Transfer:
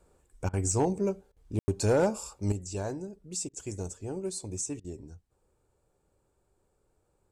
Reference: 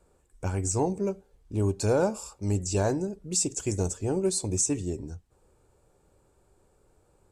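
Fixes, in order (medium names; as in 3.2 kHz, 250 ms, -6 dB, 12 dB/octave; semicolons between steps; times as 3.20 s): clip repair -18 dBFS; room tone fill 1.59–1.68 s; interpolate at 0.49/1.32/3.49/4.80 s, 43 ms; gain correction +8.5 dB, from 2.52 s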